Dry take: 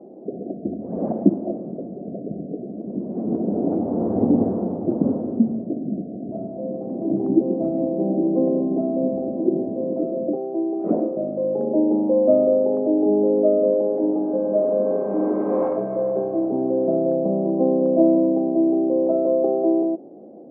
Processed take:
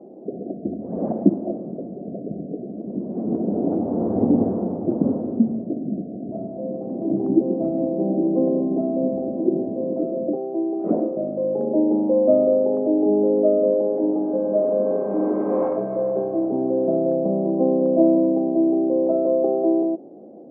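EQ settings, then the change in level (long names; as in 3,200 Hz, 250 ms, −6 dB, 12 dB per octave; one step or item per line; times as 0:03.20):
high-frequency loss of the air 59 metres
0.0 dB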